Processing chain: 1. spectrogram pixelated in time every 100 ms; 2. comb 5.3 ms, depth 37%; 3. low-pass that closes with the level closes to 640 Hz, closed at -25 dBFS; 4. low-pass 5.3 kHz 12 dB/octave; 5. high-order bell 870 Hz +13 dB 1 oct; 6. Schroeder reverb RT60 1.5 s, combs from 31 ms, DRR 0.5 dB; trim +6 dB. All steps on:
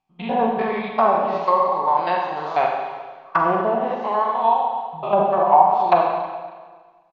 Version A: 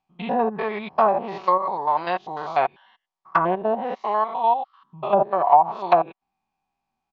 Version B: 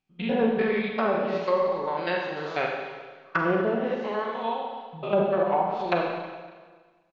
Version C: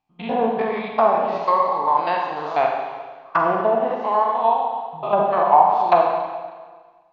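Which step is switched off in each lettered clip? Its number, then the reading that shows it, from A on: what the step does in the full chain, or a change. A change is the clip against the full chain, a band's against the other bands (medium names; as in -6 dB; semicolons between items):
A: 6, loudness change -2.5 LU; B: 5, loudness change -7.0 LU; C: 2, 125 Hz band -2.0 dB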